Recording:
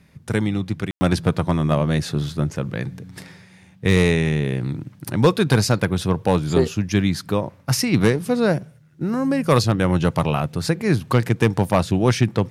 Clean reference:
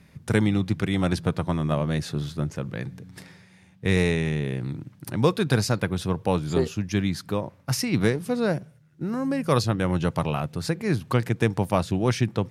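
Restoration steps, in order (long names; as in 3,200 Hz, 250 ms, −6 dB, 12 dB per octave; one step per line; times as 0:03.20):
clipped peaks rebuilt −6.5 dBFS
ambience match 0:00.91–0:01.01
level correction −5.5 dB, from 0:00.98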